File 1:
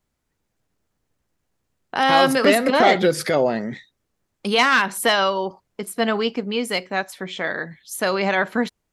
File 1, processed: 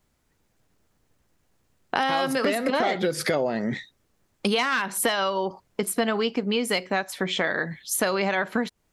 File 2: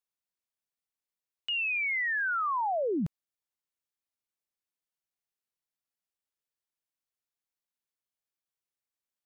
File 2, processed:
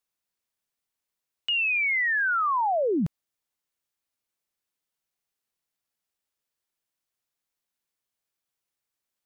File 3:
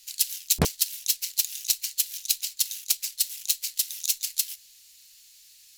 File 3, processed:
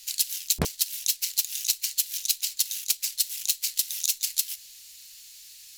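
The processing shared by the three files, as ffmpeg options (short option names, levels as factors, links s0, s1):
-af "acompressor=threshold=0.0447:ratio=8,volume=2"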